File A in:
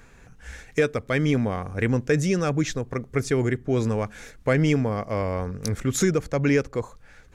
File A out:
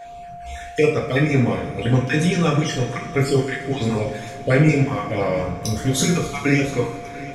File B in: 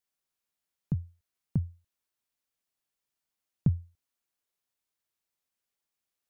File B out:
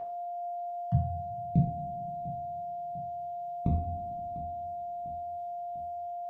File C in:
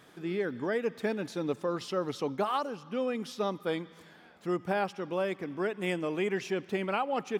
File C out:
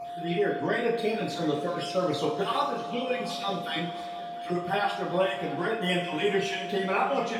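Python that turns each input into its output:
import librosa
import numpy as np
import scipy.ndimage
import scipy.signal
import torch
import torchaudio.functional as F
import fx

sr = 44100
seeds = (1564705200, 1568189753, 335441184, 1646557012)

y = fx.spec_dropout(x, sr, seeds[0], share_pct=31)
y = fx.peak_eq(y, sr, hz=3400.0, db=6.5, octaves=0.63)
y = y + 10.0 ** (-37.0 / 20.0) * np.sin(2.0 * np.pi * 700.0 * np.arange(len(y)) / sr)
y = fx.echo_feedback(y, sr, ms=698, feedback_pct=52, wet_db=-17.5)
y = fx.rev_double_slope(y, sr, seeds[1], early_s=0.44, late_s=3.0, knee_db=-18, drr_db=-4.5)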